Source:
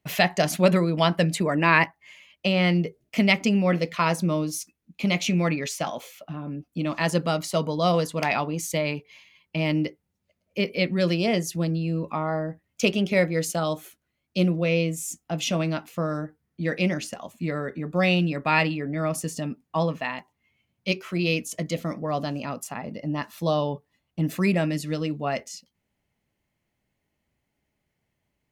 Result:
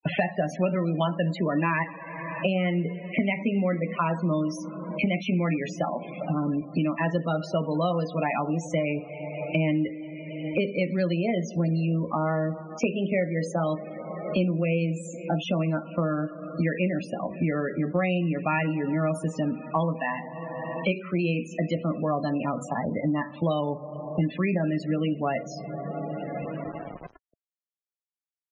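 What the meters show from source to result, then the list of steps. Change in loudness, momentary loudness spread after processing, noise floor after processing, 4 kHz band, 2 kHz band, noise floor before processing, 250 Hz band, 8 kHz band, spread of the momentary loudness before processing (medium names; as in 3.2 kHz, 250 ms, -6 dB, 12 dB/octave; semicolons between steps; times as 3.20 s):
-2.5 dB, 8 LU, -56 dBFS, -9.5 dB, -5.0 dB, -79 dBFS, -0.5 dB, -13.0 dB, 12 LU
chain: low-pass 3.2 kHz 6 dB/octave; two-slope reverb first 0.36 s, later 3.9 s, from -17 dB, DRR 7 dB; word length cut 10-bit, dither none; loudest bins only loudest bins 32; three bands compressed up and down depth 100%; trim -2.5 dB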